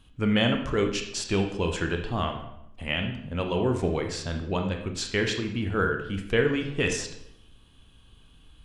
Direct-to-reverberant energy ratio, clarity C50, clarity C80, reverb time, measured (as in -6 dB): 4.0 dB, 7.0 dB, 10.0 dB, 0.80 s